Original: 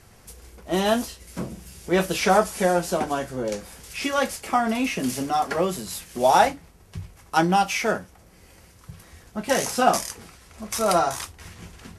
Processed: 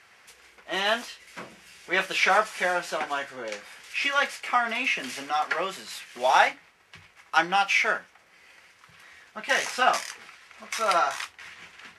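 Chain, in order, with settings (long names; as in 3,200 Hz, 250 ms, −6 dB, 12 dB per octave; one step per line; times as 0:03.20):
resonant band-pass 2,100 Hz, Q 1.3
level +6 dB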